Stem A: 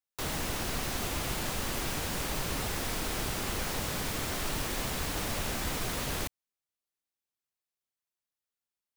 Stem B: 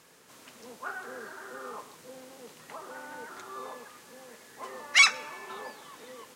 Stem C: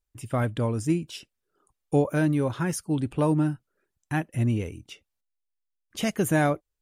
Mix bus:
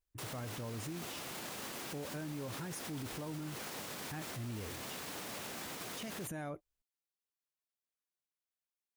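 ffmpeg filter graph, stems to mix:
ffmpeg -i stem1.wav -i stem2.wav -i stem3.wav -filter_complex "[0:a]highpass=180,volume=-6.5dB[link_01];[2:a]alimiter=limit=-19dB:level=0:latency=1:release=352,volume=-5dB[link_02];[link_01][link_02]amix=inputs=2:normalize=0,alimiter=level_in=10.5dB:limit=-24dB:level=0:latency=1:release=29,volume=-10.5dB" out.wav

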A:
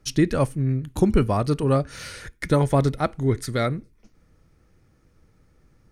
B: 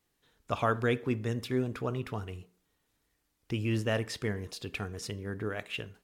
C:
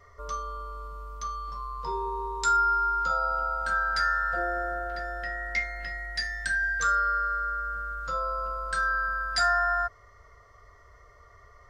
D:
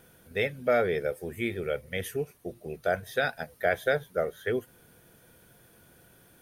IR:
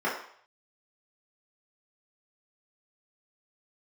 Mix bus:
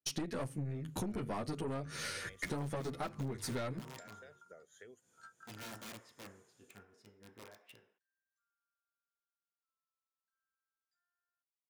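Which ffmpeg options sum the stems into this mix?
-filter_complex "[0:a]bandreject=frequency=50:width_type=h:width=6,bandreject=frequency=100:width_type=h:width=6,bandreject=frequency=150:width_type=h:width=6,asplit=2[link_01][link_02];[link_02]adelay=10.6,afreqshift=1.5[link_03];[link_01][link_03]amix=inputs=2:normalize=1,volume=2dB,asplit=2[link_04][link_05];[1:a]aeval=exprs='(mod(21.1*val(0)+1,2)-1)/21.1':channel_layout=same,adelay=1950,volume=-14dB,asplit=2[link_06][link_07];[link_07]volume=-21dB[link_08];[2:a]highpass=1300,adelay=1550,volume=-16dB,asplit=3[link_09][link_10][link_11];[link_09]atrim=end=4.63,asetpts=PTS-STARTPTS,afade=type=out:start_time=4.626:duration=0.004:curve=hsin[link_12];[link_10]atrim=start=4.63:end=5.13,asetpts=PTS-STARTPTS,volume=0[link_13];[link_11]atrim=start=5.13,asetpts=PTS-STARTPTS,afade=type=in:duration=0.004:curve=hsin[link_14];[link_12][link_13][link_14]concat=n=3:v=0:a=1[link_15];[3:a]lowpass=frequency=7000:width_type=q:width=11,adelay=350,volume=-16dB[link_16];[link_05]apad=whole_len=584199[link_17];[link_15][link_17]sidechaingate=range=-48dB:threshold=-56dB:ratio=16:detection=peak[link_18];[link_18][link_16]amix=inputs=2:normalize=0,highshelf=frequency=8700:gain=6,acompressor=threshold=-51dB:ratio=12,volume=0dB[link_19];[link_04][link_06]amix=inputs=2:normalize=0,agate=range=-33dB:threshold=-44dB:ratio=3:detection=peak,acompressor=threshold=-18dB:ratio=6,volume=0dB[link_20];[4:a]atrim=start_sample=2205[link_21];[link_08][link_21]afir=irnorm=-1:irlink=0[link_22];[link_19][link_20][link_22]amix=inputs=3:normalize=0,highpass=120,aeval=exprs='(tanh(15.8*val(0)+0.4)-tanh(0.4))/15.8':channel_layout=same,acompressor=threshold=-35dB:ratio=12"

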